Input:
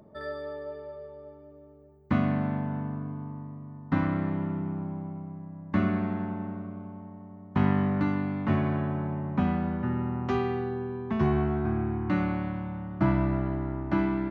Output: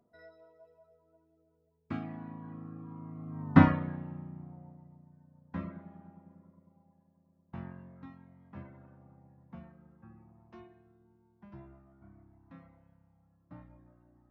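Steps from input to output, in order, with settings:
source passing by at 0:03.54, 33 m/s, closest 6 metres
reverb reduction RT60 1.3 s
level +8 dB

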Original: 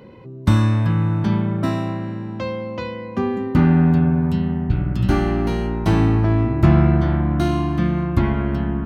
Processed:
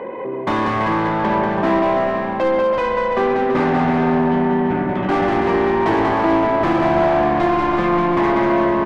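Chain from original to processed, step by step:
adaptive Wiener filter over 9 samples
bass and treble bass −14 dB, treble −13 dB
in parallel at −0.5 dB: downward compressor, threshold −33 dBFS, peak gain reduction 15 dB
on the sum: notch comb filter 1,400 Hz
mid-hump overdrive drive 25 dB, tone 1,200 Hz, clips at −10 dBFS
on a send: bouncing-ball delay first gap 190 ms, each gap 0.75×, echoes 5

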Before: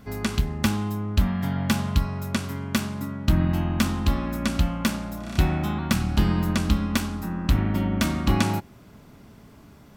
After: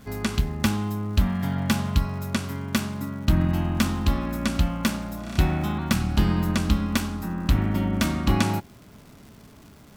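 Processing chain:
surface crackle 310 per second −42 dBFS

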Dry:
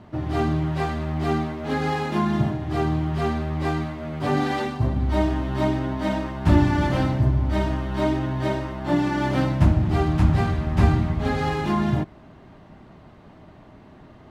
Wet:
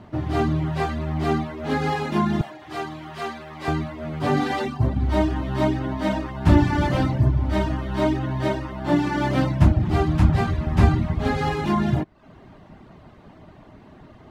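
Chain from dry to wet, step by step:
0:02.41–0:03.68: high-pass filter 960 Hz 6 dB per octave
reverb reduction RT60 0.52 s
level +2 dB

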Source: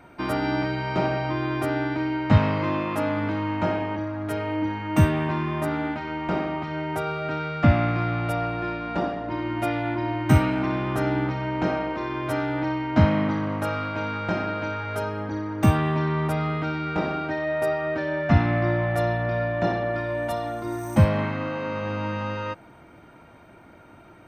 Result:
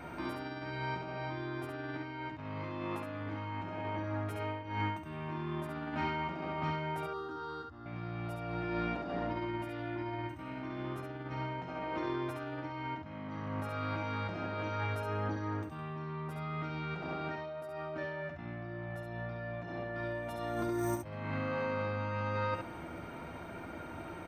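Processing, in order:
compressor whose output falls as the input rises −35 dBFS, ratio −1
0:07.06–0:07.86: phaser with its sweep stopped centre 630 Hz, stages 6
ambience of single reflections 12 ms −7 dB, 69 ms −4.5 dB
level −6 dB

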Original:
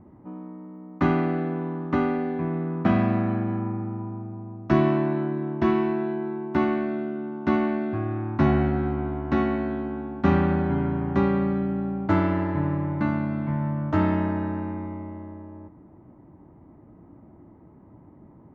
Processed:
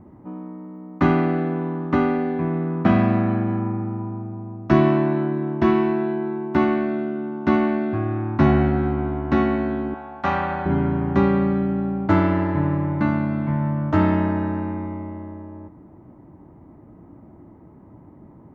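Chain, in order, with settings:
0:09.94–0:10.66: low shelf with overshoot 480 Hz −11.5 dB, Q 1.5
level +4 dB

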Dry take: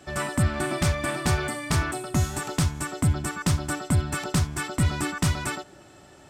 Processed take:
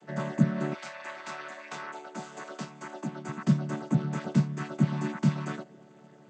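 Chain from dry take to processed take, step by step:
channel vocoder with a chord as carrier major triad, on D3
0:00.73–0:03.28: high-pass filter 1,200 Hz → 340 Hz 12 dB per octave

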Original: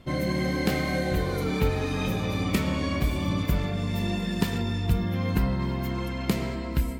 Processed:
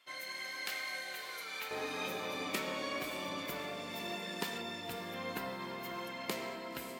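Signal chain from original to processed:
high-pass filter 1,400 Hz 12 dB per octave, from 0:01.71 460 Hz
feedback delay with all-pass diffusion 559 ms, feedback 45%, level −10.5 dB
level −5.5 dB

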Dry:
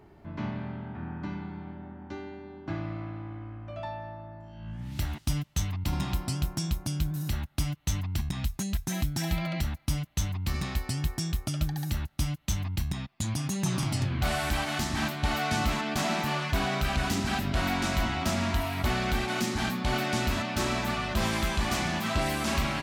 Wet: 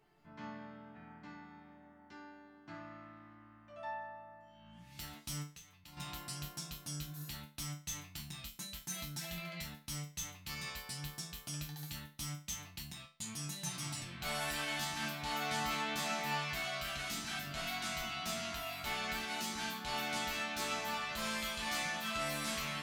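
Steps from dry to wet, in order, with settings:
tilt shelving filter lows −6 dB, about 1,200 Hz
0:05.44–0:05.97: downward compressor 4 to 1, threshold −44 dBFS, peak gain reduction 16 dB
resonators tuned to a chord D3 minor, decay 0.32 s
level +4 dB

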